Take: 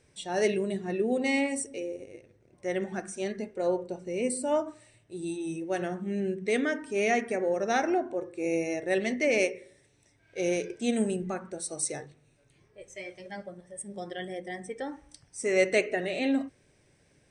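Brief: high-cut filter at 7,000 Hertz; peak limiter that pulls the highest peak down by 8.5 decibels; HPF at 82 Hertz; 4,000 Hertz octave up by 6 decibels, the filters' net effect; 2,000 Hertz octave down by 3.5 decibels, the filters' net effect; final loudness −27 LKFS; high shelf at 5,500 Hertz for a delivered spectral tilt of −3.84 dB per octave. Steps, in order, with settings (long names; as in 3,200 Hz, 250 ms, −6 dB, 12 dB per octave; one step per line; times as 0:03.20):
high-pass filter 82 Hz
low-pass filter 7,000 Hz
parametric band 2,000 Hz −7.5 dB
parametric band 4,000 Hz +8.5 dB
high-shelf EQ 5,500 Hz +6 dB
level +5 dB
brickwall limiter −15 dBFS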